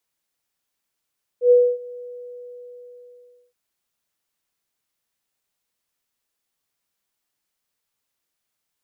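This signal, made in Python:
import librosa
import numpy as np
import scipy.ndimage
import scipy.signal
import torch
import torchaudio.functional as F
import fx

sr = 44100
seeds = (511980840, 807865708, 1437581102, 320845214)

y = fx.adsr_tone(sr, wave='sine', hz=490.0, attack_ms=98.0, decay_ms=269.0, sustain_db=-24.0, held_s=0.59, release_ms=1530.0, level_db=-8.5)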